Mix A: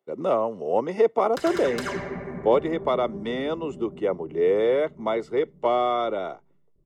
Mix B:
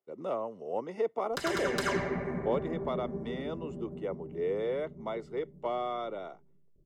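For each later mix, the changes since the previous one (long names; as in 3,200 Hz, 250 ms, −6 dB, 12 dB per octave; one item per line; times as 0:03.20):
speech −11.0 dB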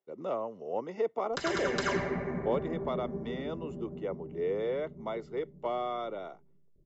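master: add linear-phase brick-wall low-pass 7,700 Hz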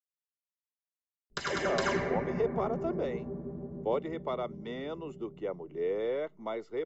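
speech: entry +1.40 s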